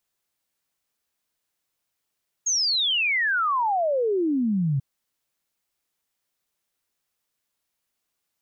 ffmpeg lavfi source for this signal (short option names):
-f lavfi -i "aevalsrc='0.1*clip(min(t,2.34-t)/0.01,0,1)*sin(2*PI*6700*2.34/log(130/6700)*(exp(log(130/6700)*t/2.34)-1))':d=2.34:s=44100"